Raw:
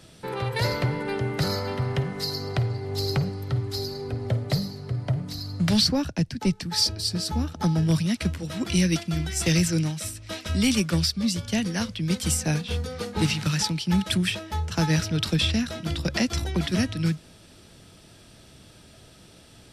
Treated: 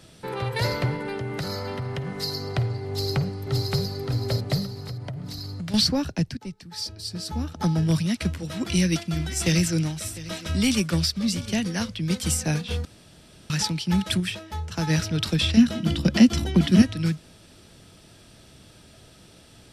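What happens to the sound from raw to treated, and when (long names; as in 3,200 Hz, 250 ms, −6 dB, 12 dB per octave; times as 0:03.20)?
0:00.96–0:02.07: downward compressor 3 to 1, threshold −27 dBFS
0:02.89–0:03.83: delay throw 570 ms, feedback 40%, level −2 dB
0:04.66–0:05.74: downward compressor, threshold −30 dBFS
0:06.37–0:07.61: fade in quadratic, from −13 dB
0:08.44–0:11.57: single-tap delay 702 ms −17 dB
0:12.85–0:13.50: fill with room tone
0:14.20–0:14.87: clip gain −3.5 dB
0:15.57–0:16.82: hollow resonant body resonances 220/3,000 Hz, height 12 dB, ringing for 30 ms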